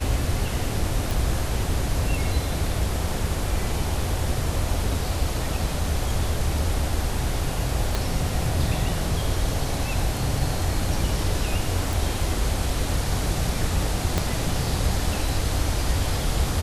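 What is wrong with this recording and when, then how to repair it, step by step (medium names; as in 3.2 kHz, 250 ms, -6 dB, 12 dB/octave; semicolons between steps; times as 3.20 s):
1.11 s: pop
7.95 s: pop
11.93 s: pop
14.18 s: pop -8 dBFS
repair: de-click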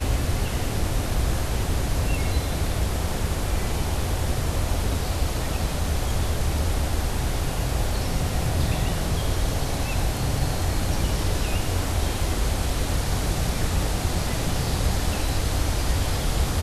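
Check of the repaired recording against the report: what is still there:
7.95 s: pop
14.18 s: pop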